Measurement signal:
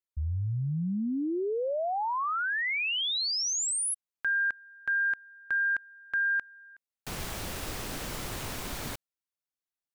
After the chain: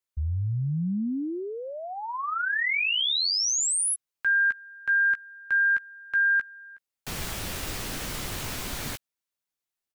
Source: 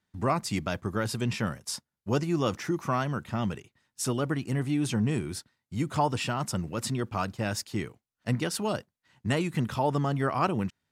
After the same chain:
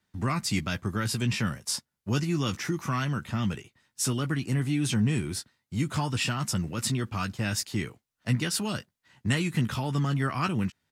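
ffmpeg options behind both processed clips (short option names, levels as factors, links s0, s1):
-filter_complex "[0:a]acrossover=split=290|1300[s0][s1][s2];[s1]acompressor=threshold=0.01:ratio=10:attack=1.8:release=139:knee=6:detection=rms[s3];[s2]asplit=2[s4][s5];[s5]adelay=15,volume=0.631[s6];[s4][s6]amix=inputs=2:normalize=0[s7];[s0][s3][s7]amix=inputs=3:normalize=0,volume=1.41"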